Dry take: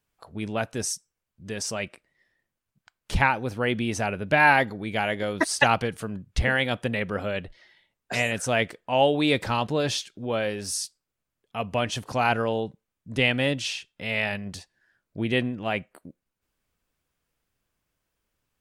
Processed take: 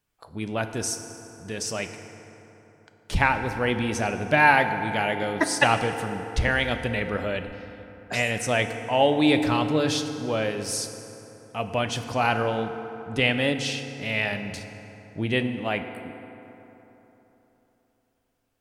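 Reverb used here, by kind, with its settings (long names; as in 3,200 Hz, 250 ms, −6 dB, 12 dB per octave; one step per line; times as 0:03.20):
feedback delay network reverb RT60 3.6 s, high-frequency decay 0.5×, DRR 7 dB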